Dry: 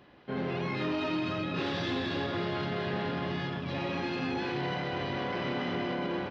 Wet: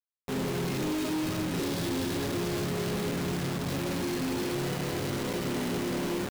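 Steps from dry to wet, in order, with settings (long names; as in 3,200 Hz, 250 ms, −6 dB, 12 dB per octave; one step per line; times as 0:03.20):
flat-topped bell 1,500 Hz −12 dB 2.8 octaves
log-companded quantiser 2 bits
level −3.5 dB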